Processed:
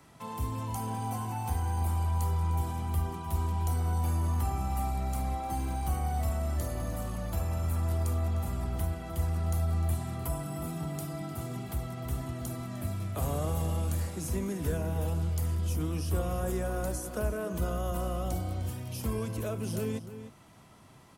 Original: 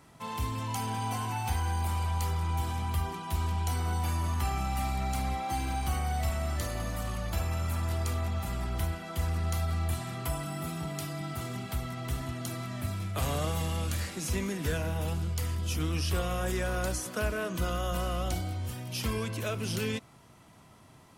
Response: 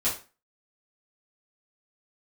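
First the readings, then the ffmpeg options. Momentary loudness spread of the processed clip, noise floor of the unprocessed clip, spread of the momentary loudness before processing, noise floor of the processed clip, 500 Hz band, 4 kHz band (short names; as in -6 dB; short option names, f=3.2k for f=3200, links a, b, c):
7 LU, -56 dBFS, 5 LU, -53 dBFS, 0.0 dB, -9.0 dB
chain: -filter_complex "[0:a]acrossover=split=140|1100|7500[a][b][c][d];[c]acompressor=threshold=-53dB:ratio=4[e];[a][b][e][d]amix=inputs=4:normalize=0,asplit=2[f][g];[g]adelay=303.2,volume=-11dB,highshelf=f=4k:g=-6.82[h];[f][h]amix=inputs=2:normalize=0"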